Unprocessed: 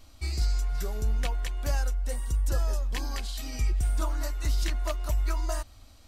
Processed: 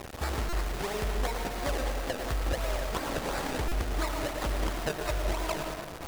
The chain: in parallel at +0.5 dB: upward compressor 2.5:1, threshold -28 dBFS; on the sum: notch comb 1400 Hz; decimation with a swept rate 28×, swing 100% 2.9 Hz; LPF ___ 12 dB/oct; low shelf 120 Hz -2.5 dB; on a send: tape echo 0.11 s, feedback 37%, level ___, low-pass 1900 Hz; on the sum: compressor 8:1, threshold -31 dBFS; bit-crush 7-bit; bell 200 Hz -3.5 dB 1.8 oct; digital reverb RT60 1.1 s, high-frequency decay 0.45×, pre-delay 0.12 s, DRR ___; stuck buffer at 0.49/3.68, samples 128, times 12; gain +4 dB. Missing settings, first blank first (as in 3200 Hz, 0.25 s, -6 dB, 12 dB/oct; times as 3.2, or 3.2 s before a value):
11000 Hz, -7 dB, 7 dB